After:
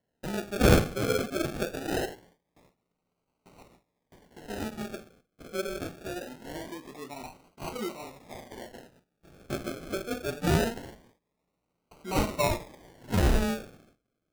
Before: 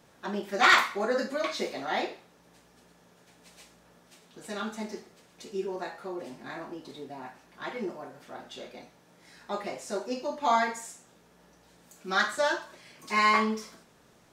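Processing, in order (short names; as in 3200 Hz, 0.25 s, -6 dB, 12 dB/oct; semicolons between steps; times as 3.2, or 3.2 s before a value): gate with hold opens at -46 dBFS; decimation with a swept rate 36×, swing 60% 0.23 Hz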